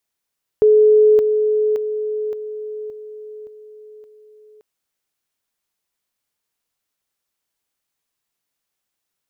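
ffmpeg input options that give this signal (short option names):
-f lavfi -i "aevalsrc='pow(10,(-8-6*floor(t/0.57))/20)*sin(2*PI*427*t)':d=3.99:s=44100"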